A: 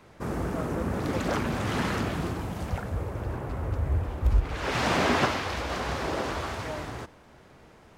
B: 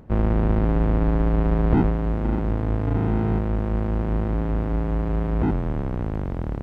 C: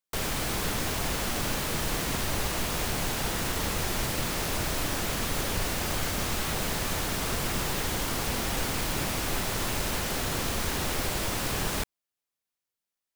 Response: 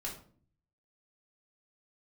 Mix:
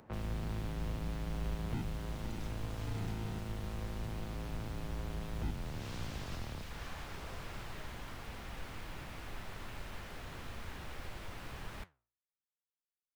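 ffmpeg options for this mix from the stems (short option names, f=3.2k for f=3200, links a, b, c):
-filter_complex "[0:a]adelay=1100,volume=-12.5dB[a];[1:a]highpass=f=330:p=1,volume=2.5dB[b];[2:a]bass=f=250:g=3,treble=f=4k:g=-14,volume=-9dB[c];[a][b][c]amix=inputs=3:normalize=0,acrossover=split=170|3000[d][e][f];[e]acompressor=threshold=-38dB:ratio=6[g];[d][g][f]amix=inputs=3:normalize=0,flanger=delay=8.5:depth=9.1:regen=76:speed=1.7:shape=sinusoidal,equalizer=f=250:w=0.41:g=-5.5"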